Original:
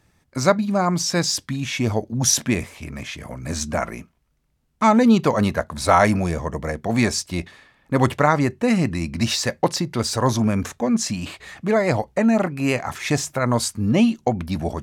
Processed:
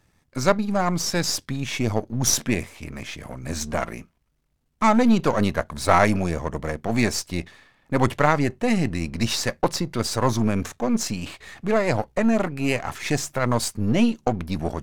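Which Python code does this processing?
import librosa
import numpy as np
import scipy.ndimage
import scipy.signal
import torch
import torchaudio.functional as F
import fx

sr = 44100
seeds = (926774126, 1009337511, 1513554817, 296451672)

y = np.where(x < 0.0, 10.0 ** (-7.0 / 20.0) * x, x)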